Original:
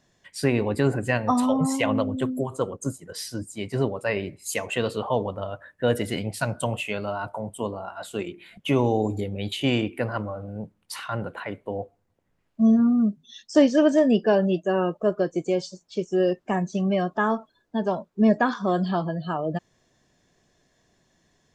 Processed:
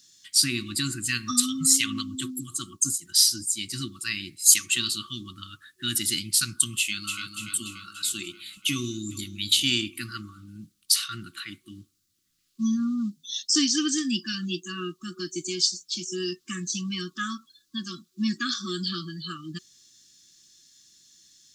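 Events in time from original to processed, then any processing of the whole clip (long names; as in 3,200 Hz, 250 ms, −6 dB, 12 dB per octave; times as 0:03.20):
0:06.78–0:07.35: delay throw 290 ms, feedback 60%, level −6.5 dB
0:08.72–0:09.36: delay throw 390 ms, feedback 35%, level −17 dB
whole clip: high shelf with overshoot 2,900 Hz +12.5 dB, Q 1.5; brick-wall band-stop 370–1,100 Hz; spectral tilt +2 dB per octave; level −3 dB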